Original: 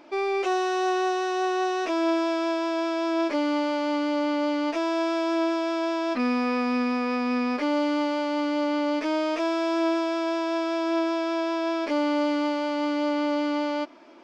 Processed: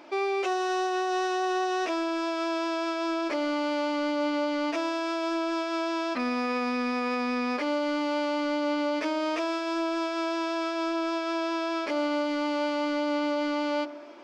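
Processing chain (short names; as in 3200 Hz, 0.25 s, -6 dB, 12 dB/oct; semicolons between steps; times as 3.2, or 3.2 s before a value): low shelf 180 Hz -11.5 dB; limiter -23.5 dBFS, peak gain reduction 5 dB; in parallel at -8 dB: soft clip -32.5 dBFS, distortion -12 dB; on the sum: reverb RT60 1.1 s, pre-delay 5 ms, DRR 15 dB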